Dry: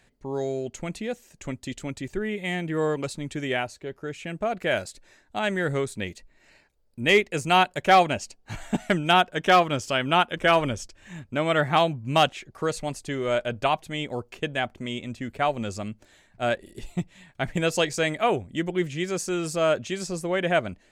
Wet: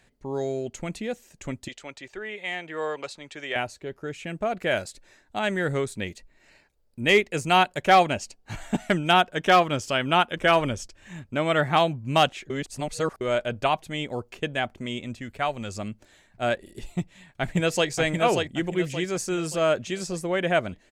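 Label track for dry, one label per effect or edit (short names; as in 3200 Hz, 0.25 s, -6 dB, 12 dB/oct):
1.680000	3.560000	three-band isolator lows -18 dB, under 470 Hz, highs -15 dB, over 6600 Hz
12.500000	13.210000	reverse
15.200000	15.750000	bell 320 Hz -5 dB 2.7 oct
16.840000	17.890000	echo throw 0.58 s, feedback 40%, level -4 dB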